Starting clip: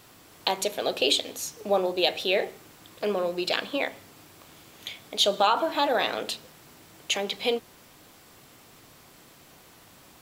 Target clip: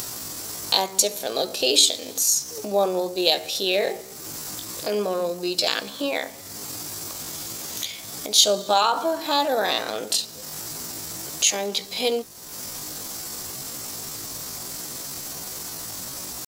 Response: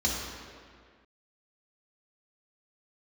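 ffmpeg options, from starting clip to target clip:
-af "atempo=0.62,acompressor=mode=upward:threshold=-30dB:ratio=2.5,highshelf=frequency=4000:width_type=q:width=1.5:gain=9.5,volume=2dB"

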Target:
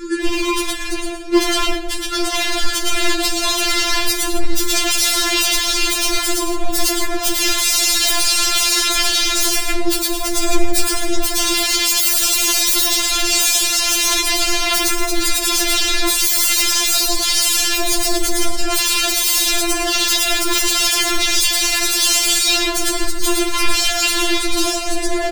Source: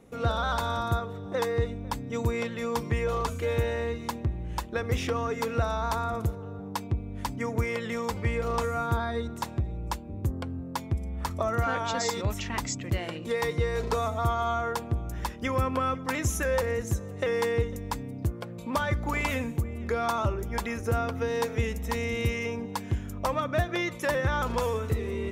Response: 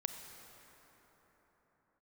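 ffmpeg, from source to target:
-filter_complex "[0:a]asuperstop=centerf=900:order=20:qfactor=0.89,aecho=1:1:112|224|336:0.708|0.149|0.0312,asetrate=29433,aresample=44100,atempo=1.49831,bandreject=frequency=45.63:width_type=h:width=4,bandreject=frequency=91.26:width_type=h:width=4,bandreject=frequency=136.89:width_type=h:width=4,bandreject=frequency=182.52:width_type=h:width=4,bandreject=frequency=228.15:width_type=h:width=4,bandreject=frequency=273.78:width_type=h:width=4,bandreject=frequency=319.41:width_type=h:width=4,bandreject=frequency=365.04:width_type=h:width=4,bandreject=frequency=410.67:width_type=h:width=4,bandreject=frequency=456.3:width_type=h:width=4,bandreject=frequency=501.93:width_type=h:width=4,bandreject=frequency=547.56:width_type=h:width=4,bandreject=frequency=593.19:width_type=h:width=4,bandreject=frequency=638.82:width_type=h:width=4,bandreject=frequency=684.45:width_type=h:width=4,bandreject=frequency=730.08:width_type=h:width=4,bandreject=frequency=775.71:width_type=h:width=4,bandreject=frequency=821.34:width_type=h:width=4,bandreject=frequency=866.97:width_type=h:width=4,bandreject=frequency=912.6:width_type=h:width=4,bandreject=frequency=958.23:width_type=h:width=4,bandreject=frequency=1003.86:width_type=h:width=4,bandreject=frequency=1049.49:width_type=h:width=4,bandreject=frequency=1095.12:width_type=h:width=4,bandreject=frequency=1140.75:width_type=h:width=4,bandreject=frequency=1186.38:width_type=h:width=4,bandreject=frequency=1232.01:width_type=h:width=4,bandreject=frequency=1277.64:width_type=h:width=4,bandreject=frequency=1323.27:width_type=h:width=4,bandreject=frequency=1368.9:width_type=h:width=4,dynaudnorm=framelen=640:gausssize=13:maxgain=15.5dB,aeval=exprs='0.0355*(abs(mod(val(0)/0.0355+3,4)-2)-1)':channel_layout=same,acrossover=split=190|3000[link_01][link_02][link_03];[link_02]acompressor=threshold=-48dB:ratio=6[link_04];[link_01][link_04][link_03]amix=inputs=3:normalize=0[link_05];[1:a]atrim=start_sample=2205,afade=type=out:start_time=0.22:duration=0.01,atrim=end_sample=10143[link_06];[link_05][link_06]afir=irnorm=-1:irlink=0,alimiter=level_in=35.5dB:limit=-1dB:release=50:level=0:latency=1,afftfilt=real='re*4*eq(mod(b,16),0)':imag='im*4*eq(mod(b,16),0)':win_size=2048:overlap=0.75,volume=-3.5dB"

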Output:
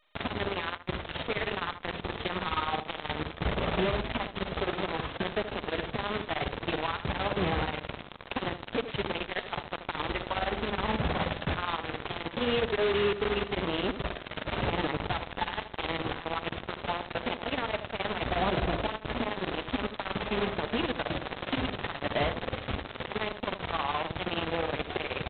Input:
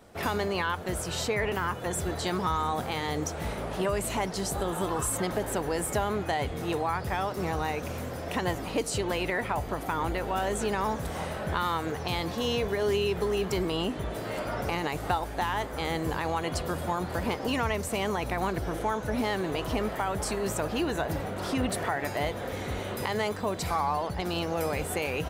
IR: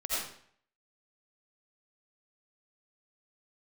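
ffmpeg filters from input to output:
-filter_complex "[0:a]asettb=1/sr,asplit=3[link_01][link_02][link_03];[link_01]atrim=end=16.804[link_04];[link_02]atrim=start=16.8:end=18.9,asetpts=PTS-STARTPTS,afade=type=in:duration=0.004:curve=qsin,afade=type=out:start_time=2.096:duration=0.004:curve=qsin,adynamicequalizer=threshold=0.00398:dfrequency=660:dqfactor=3.2:tfrequency=660:tqfactor=3.2:attack=5:release=100:ratio=0.375:range=3.5:mode=boostabove:tftype=bell[link_05];[link_03]atrim=start=18.896[link_06];[link_04][link_05]acrossfade=duration=0.004:curve1=hsin:curve2=qsin[link_07];[link_07][link_06]acrossfade=duration=0.004:curve1=qsin:curve2=hsin,alimiter=limit=-20.5dB:level=0:latency=1:release=193,acontrast=86,tremolo=f=19:d=0.52,asoftclip=type=tanh:threshold=-20.5dB,flanger=delay=0:depth=4.8:regen=74:speed=0.27:shape=sinusoidal,acrusher=bits=4:mix=0:aa=0.000001,asplit=2[link_08][link_09];[link_09]adelay=78,lowpass=frequency=1100:poles=1,volume=-10dB,asplit=2[link_10][link_11];[link_11]adelay=78,lowpass=frequency=1100:poles=1,volume=0.19,asplit=2[link_12][link_13];[link_13]adelay=78,lowpass=frequency=1100:poles=1,volume=0.19[link_14];[link_08][link_10][link_12][link_14]amix=inputs=4:normalize=0" -ar 8000 -c:a adpcm_g726 -b:a 16k

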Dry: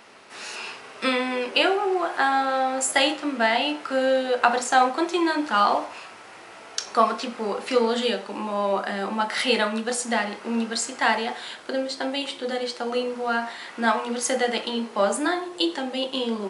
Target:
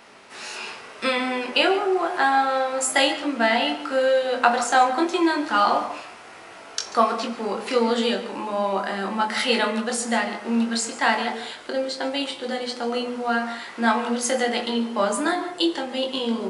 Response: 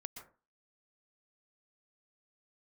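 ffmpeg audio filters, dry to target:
-filter_complex "[0:a]asplit=2[link_01][link_02];[1:a]atrim=start_sample=2205,lowshelf=frequency=170:gain=9,adelay=21[link_03];[link_02][link_03]afir=irnorm=-1:irlink=0,volume=-2dB[link_04];[link_01][link_04]amix=inputs=2:normalize=0"

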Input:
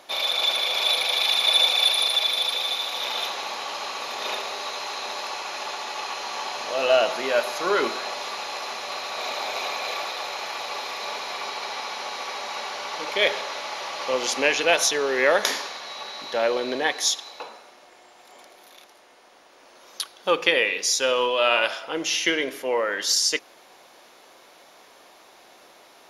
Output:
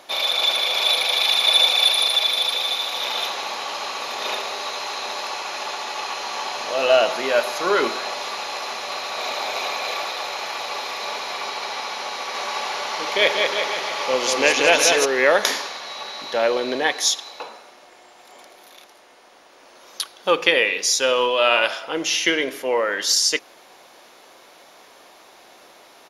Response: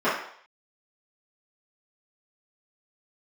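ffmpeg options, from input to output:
-filter_complex "[0:a]asplit=3[link_01][link_02][link_03];[link_01]afade=type=out:start_time=12.33:duration=0.02[link_04];[link_02]aecho=1:1:190|361|514.9|653.4|778.1:0.631|0.398|0.251|0.158|0.1,afade=type=in:start_time=12.33:duration=0.02,afade=type=out:start_time=15.04:duration=0.02[link_05];[link_03]afade=type=in:start_time=15.04:duration=0.02[link_06];[link_04][link_05][link_06]amix=inputs=3:normalize=0,volume=3dB"

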